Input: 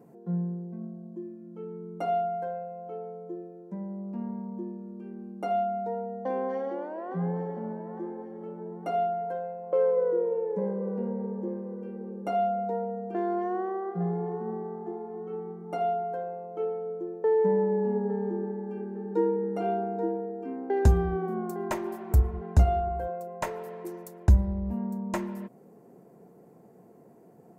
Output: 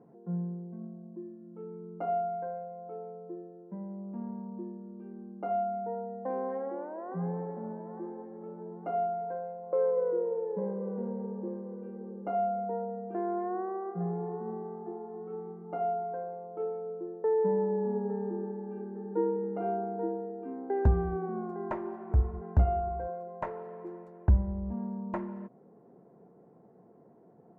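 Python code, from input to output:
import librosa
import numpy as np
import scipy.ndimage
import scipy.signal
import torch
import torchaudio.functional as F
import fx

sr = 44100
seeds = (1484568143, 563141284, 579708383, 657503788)

y = scipy.signal.sosfilt(scipy.signal.cheby1(2, 1.0, 1300.0, 'lowpass', fs=sr, output='sos'), x)
y = y * librosa.db_to_amplitude(-3.0)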